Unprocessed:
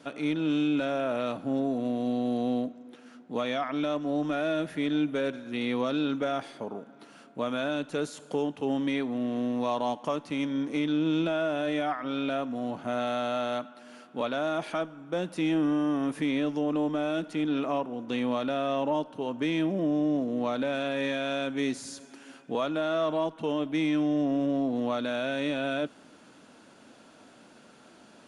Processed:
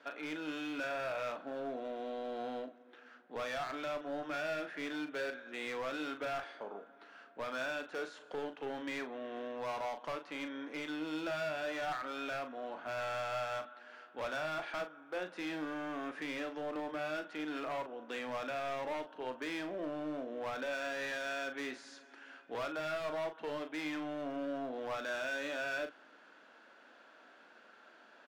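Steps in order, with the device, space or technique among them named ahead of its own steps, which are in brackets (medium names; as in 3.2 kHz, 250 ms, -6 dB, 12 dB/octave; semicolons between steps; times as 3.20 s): megaphone (band-pass 460–3700 Hz; peaking EQ 1.6 kHz +8 dB 0.5 oct; hard clipper -29.5 dBFS, distortion -10 dB; doubling 39 ms -8.5 dB); trim -5.5 dB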